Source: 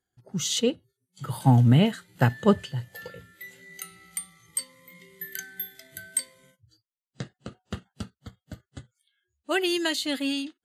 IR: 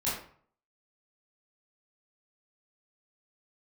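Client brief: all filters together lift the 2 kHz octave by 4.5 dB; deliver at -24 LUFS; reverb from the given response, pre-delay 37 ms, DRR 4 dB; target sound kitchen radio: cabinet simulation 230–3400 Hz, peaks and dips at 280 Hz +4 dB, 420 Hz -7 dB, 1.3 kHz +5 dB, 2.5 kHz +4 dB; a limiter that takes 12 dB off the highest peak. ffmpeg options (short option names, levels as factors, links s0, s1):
-filter_complex "[0:a]equalizer=f=2000:t=o:g=3.5,alimiter=limit=0.133:level=0:latency=1,asplit=2[s0][s1];[1:a]atrim=start_sample=2205,adelay=37[s2];[s1][s2]afir=irnorm=-1:irlink=0,volume=0.282[s3];[s0][s3]amix=inputs=2:normalize=0,highpass=230,equalizer=f=280:t=q:w=4:g=4,equalizer=f=420:t=q:w=4:g=-7,equalizer=f=1300:t=q:w=4:g=5,equalizer=f=2500:t=q:w=4:g=4,lowpass=f=3400:w=0.5412,lowpass=f=3400:w=1.3066,volume=2.37"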